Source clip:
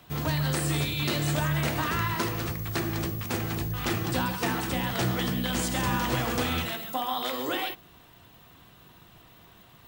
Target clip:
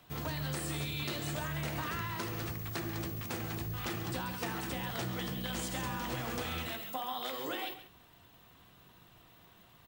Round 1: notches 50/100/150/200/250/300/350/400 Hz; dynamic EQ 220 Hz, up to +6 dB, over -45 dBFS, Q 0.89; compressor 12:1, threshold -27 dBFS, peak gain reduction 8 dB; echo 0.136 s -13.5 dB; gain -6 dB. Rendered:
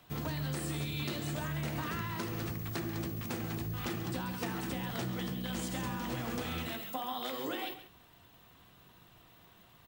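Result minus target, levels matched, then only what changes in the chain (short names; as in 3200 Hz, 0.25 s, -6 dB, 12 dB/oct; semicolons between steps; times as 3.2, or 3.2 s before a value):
250 Hz band +3.0 dB
remove: dynamic EQ 220 Hz, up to +6 dB, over -45 dBFS, Q 0.89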